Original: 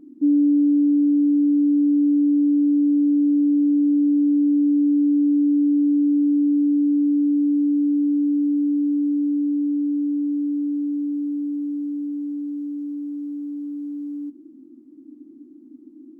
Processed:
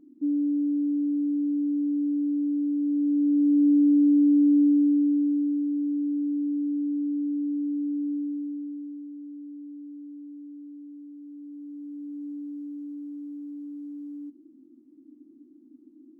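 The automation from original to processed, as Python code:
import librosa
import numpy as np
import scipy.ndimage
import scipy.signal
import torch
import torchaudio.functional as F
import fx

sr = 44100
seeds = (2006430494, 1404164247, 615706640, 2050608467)

y = fx.gain(x, sr, db=fx.line((2.78, -8.5), (3.68, -1.0), (4.62, -1.0), (5.66, -9.0), (8.13, -9.0), (9.09, -19.0), (11.17, -19.0), (12.27, -8.0)))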